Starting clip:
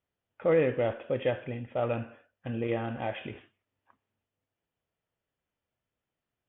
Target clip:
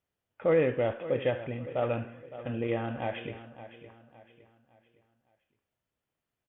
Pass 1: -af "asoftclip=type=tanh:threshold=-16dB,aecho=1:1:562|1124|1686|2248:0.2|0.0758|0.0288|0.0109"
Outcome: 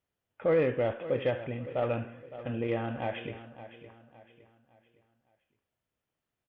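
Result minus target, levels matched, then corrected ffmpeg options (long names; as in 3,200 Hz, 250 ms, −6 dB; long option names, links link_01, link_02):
soft clipping: distortion +21 dB
-af "asoftclip=type=tanh:threshold=-4.5dB,aecho=1:1:562|1124|1686|2248:0.2|0.0758|0.0288|0.0109"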